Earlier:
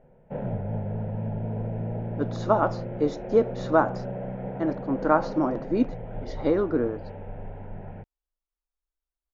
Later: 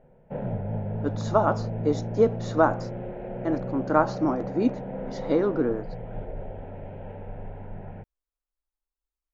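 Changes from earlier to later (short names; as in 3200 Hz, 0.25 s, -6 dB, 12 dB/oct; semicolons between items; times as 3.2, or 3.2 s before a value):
speech: entry -1.15 s; master: remove LPF 5200 Hz 12 dB/oct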